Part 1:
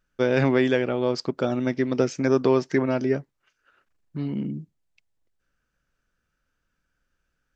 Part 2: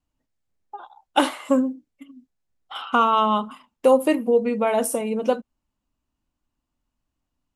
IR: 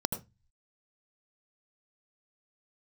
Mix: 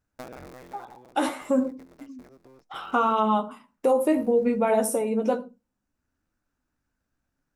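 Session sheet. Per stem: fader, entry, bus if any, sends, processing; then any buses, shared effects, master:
−7.0 dB, 0.00 s, no send, sub-harmonics by changed cycles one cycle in 3, inverted; downward compressor 6 to 1, threshold −27 dBFS, peak gain reduction 12 dB; automatic ducking −16 dB, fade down 1.10 s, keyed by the second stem
+1.0 dB, 0.00 s, send −17 dB, flanger 0.63 Hz, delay 8.7 ms, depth 8.9 ms, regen +34%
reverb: on, RT60 0.20 s, pre-delay 74 ms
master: parametric band 3,100 Hz −7.5 dB 0.4 octaves; brickwall limiter −13 dBFS, peak gain reduction 8.5 dB

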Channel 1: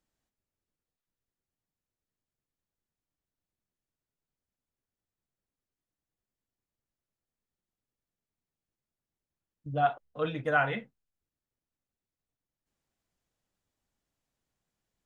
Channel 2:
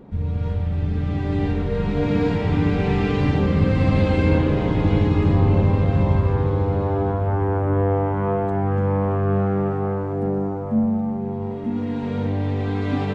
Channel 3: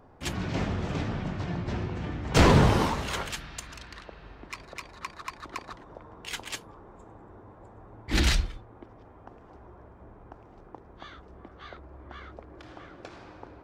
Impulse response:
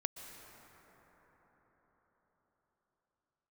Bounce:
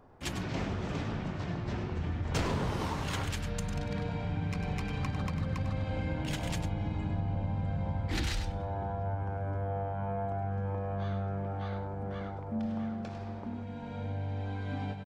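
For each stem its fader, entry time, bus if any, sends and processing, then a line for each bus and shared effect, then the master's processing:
muted
−14.5 dB, 1.80 s, no send, echo send −5.5 dB, comb filter 1.3 ms, depth 65%
−3.0 dB, 0.00 s, no send, echo send −9.5 dB, no processing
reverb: not used
echo: single-tap delay 100 ms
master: downward compressor 5 to 1, threshold −29 dBFS, peak gain reduction 12 dB

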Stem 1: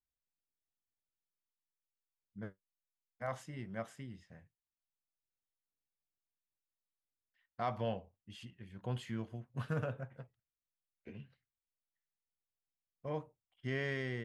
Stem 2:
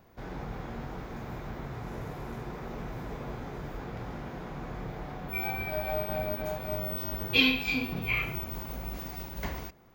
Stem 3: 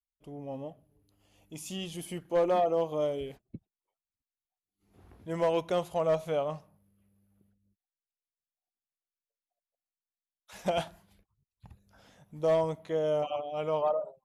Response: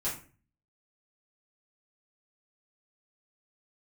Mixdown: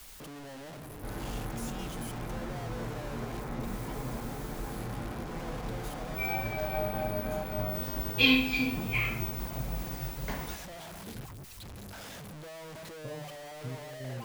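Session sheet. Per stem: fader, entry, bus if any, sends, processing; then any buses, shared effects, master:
−2.5 dB, 0.00 s, send −10.5 dB, spectral tilt −3.5 dB per octave; downward compressor, threshold −39 dBFS, peak gain reduction 14 dB; square-wave tremolo 2 Hz, depth 65%
−3.5 dB, 0.85 s, send −6.5 dB, no processing
−10.5 dB, 0.00 s, no send, sign of each sample alone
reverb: on, RT60 0.40 s, pre-delay 4 ms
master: no processing

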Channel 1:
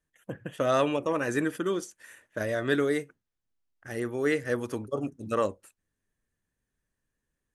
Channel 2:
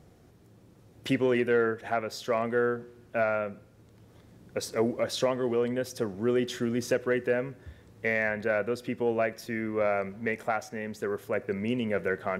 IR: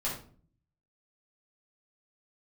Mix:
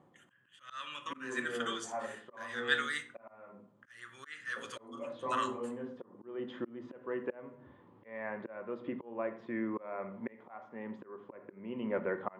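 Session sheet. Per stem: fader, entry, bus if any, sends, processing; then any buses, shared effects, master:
−5.0 dB, 0.00 s, send −10.5 dB, drawn EQ curve 110 Hz 0 dB, 240 Hz −18 dB, 870 Hz −15 dB, 1,400 Hz +8 dB, 2,600 Hz +1 dB, 7,300 Hz +6 dB
+1.5 dB, 0.00 s, send −12 dB, low-pass filter 1,000 Hz 12 dB per octave; automatic ducking −21 dB, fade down 0.40 s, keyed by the first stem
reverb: on, RT60 0.45 s, pre-delay 6 ms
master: volume swells 442 ms; loudspeaker in its box 320–7,800 Hz, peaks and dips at 450 Hz −9 dB, 660 Hz −9 dB, 1,000 Hz +7 dB, 1,500 Hz −3 dB, 3,200 Hz +8 dB, 5,600 Hz −7 dB

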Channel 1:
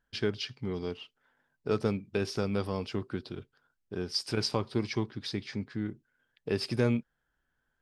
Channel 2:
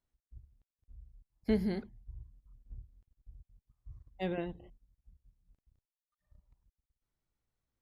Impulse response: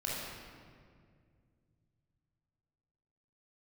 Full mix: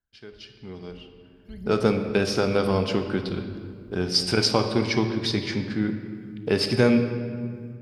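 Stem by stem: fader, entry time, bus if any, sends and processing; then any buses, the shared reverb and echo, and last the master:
0:01.15 −16.5 dB → 0:01.79 −3.5 dB, 0.00 s, send −8 dB, low-shelf EQ 93 Hz −11 dB; automatic gain control gain up to 12 dB
−16.5 dB, 0.00 s, send −10 dB, phase shifter 1.2 Hz, delay 1.9 ms, feedback 80%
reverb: on, RT60 2.1 s, pre-delay 21 ms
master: no processing

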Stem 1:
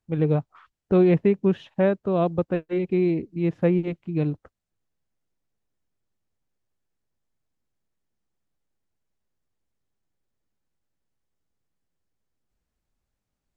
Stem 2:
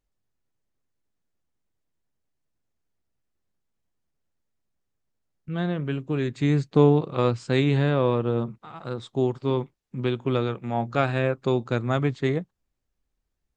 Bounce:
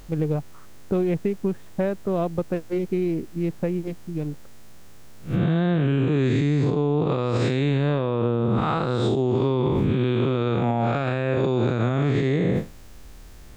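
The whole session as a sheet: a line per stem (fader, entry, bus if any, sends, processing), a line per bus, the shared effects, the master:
+1.0 dB, 0.00 s, no send, adaptive Wiener filter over 15 samples; downward compressor, threshold −21 dBFS, peak gain reduction 7 dB; automatic ducking −8 dB, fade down 1.90 s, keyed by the second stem
−3.0 dB, 0.00 s, no send, spectrum smeared in time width 202 ms; envelope flattener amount 100%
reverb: not used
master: brickwall limiter −13 dBFS, peak gain reduction 6.5 dB

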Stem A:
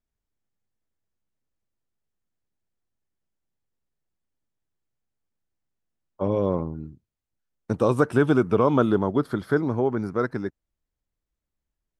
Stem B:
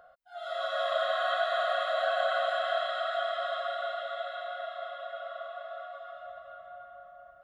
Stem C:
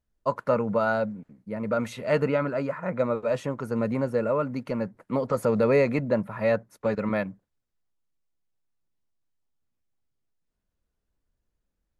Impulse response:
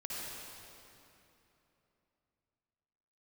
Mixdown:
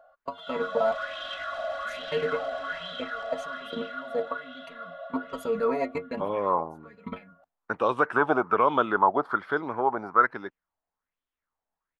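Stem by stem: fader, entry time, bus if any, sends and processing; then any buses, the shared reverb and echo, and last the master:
+2.5 dB, 0.00 s, no send, resonant band-pass 1,100 Hz, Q 1.2
−8.5 dB, 0.00 s, no send, soft clipping −27.5 dBFS, distortion −13 dB; comb filter 3.5 ms, depth 71%; automatic ducking −13 dB, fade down 0.45 s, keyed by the first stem
+2.0 dB, 0.00 s, muted 0:00.95–0:01.85, no send, comb filter 4.4 ms, depth 77%; output level in coarse steps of 22 dB; stiff-string resonator 84 Hz, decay 0.24 s, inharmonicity 0.008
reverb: not used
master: auto-filter bell 1.2 Hz 680–3,400 Hz +13 dB

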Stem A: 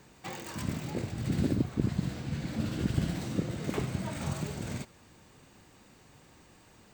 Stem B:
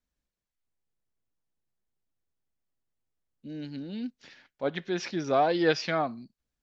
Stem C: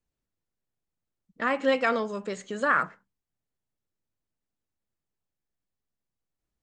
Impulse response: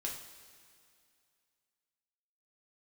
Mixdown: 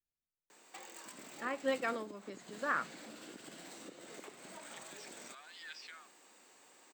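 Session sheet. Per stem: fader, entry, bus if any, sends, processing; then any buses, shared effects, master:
−2.5 dB, 0.50 s, no send, Bessel high-pass filter 440 Hz, order 4; parametric band 7,700 Hz +7.5 dB 0.25 octaves; downward compressor 10 to 1, threshold −45 dBFS, peak gain reduction 15 dB
−17.5 dB, 0.00 s, no send, high-pass filter 1,400 Hz 24 dB per octave; background raised ahead of every attack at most 52 dB per second
−9.5 dB, 0.00 s, no send, expander for the loud parts 1.5 to 1, over −33 dBFS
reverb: not used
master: no processing

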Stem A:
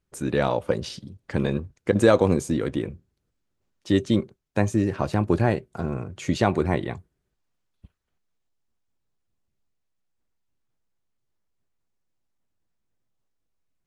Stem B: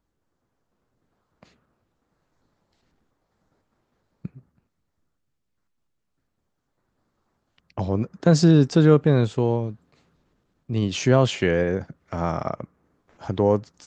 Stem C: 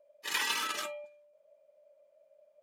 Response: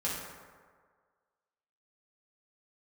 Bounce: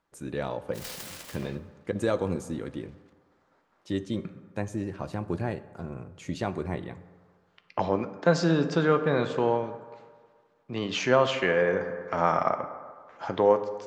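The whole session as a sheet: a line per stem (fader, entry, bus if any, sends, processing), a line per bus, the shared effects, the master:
−13.5 dB, 0.00 s, send −17.5 dB, no processing
+2.5 dB, 0.00 s, send −11.5 dB, resonant band-pass 1,400 Hz, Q 0.62
−12.5 dB, 0.50 s, send −17 dB, short delay modulated by noise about 1,500 Hz, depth 0.34 ms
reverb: on, RT60 1.7 s, pre-delay 3 ms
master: speech leveller within 3 dB 0.5 s

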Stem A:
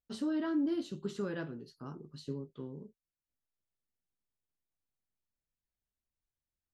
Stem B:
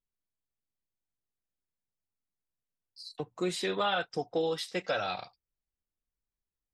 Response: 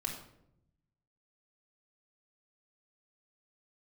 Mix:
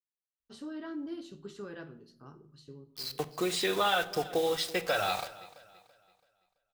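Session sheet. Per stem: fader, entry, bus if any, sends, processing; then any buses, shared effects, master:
−10.5 dB, 0.40 s, send −9.5 dB, no echo send, automatic ducking −7 dB, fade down 0.70 s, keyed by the second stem
+0.5 dB, 0.00 s, send −9.5 dB, echo send −17 dB, downward compressor 1.5 to 1, threshold −39 dBFS, peak gain reduction 5 dB; bit reduction 8 bits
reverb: on, RT60 0.75 s, pre-delay 3 ms
echo: repeating echo 333 ms, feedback 37%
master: parametric band 240 Hz −5 dB 1.4 octaves; automatic gain control gain up to 4.5 dB

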